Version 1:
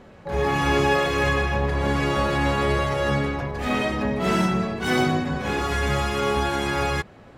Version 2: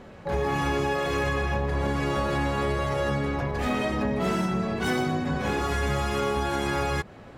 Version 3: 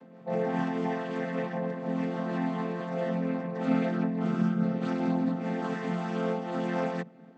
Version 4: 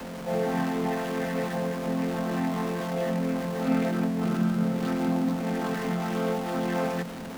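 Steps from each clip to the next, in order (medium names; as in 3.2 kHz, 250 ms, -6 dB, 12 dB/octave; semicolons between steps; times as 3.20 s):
dynamic bell 2.8 kHz, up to -3 dB, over -35 dBFS, Q 0.71; compression, threshold -24 dBFS, peak gain reduction 8 dB; trim +1.5 dB
vocoder on a held chord major triad, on F3; random flutter of the level, depth 60%; trim +1.5 dB
jump at every zero crossing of -32.5 dBFS; tape noise reduction on one side only decoder only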